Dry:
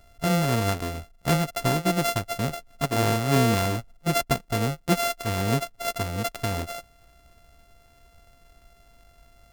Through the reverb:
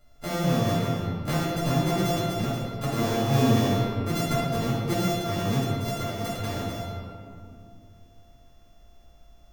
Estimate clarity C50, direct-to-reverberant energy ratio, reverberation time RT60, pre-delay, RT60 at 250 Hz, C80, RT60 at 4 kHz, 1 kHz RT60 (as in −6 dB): −1.5 dB, −9.0 dB, 2.4 s, 4 ms, 3.3 s, 0.5 dB, 1.3 s, 2.2 s